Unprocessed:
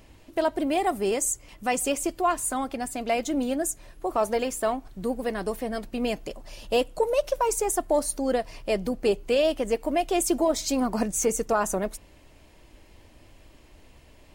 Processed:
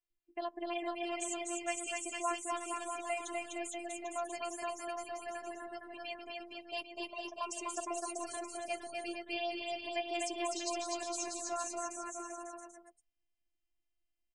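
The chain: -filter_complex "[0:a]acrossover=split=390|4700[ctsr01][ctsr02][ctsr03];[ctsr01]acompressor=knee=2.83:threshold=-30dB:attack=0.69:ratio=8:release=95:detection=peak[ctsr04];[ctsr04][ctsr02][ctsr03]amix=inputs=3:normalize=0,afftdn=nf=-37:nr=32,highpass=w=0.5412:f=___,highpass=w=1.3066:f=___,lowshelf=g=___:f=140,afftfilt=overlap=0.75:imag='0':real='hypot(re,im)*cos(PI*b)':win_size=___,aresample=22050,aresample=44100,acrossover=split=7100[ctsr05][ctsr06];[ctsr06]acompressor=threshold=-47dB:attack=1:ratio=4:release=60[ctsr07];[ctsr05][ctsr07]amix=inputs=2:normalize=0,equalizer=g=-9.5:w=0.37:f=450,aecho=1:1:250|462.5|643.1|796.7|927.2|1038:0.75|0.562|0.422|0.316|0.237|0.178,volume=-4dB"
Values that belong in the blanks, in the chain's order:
110, 110, -6, 512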